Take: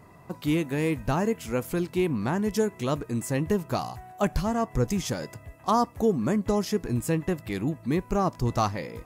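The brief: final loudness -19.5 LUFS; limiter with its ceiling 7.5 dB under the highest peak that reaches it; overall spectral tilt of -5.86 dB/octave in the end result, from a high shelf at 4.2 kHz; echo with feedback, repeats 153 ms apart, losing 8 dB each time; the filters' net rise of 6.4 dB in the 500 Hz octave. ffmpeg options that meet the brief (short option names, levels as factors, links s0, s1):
-af "equalizer=f=500:t=o:g=8,highshelf=f=4200:g=-4.5,alimiter=limit=0.178:level=0:latency=1,aecho=1:1:153|306|459|612|765:0.398|0.159|0.0637|0.0255|0.0102,volume=2"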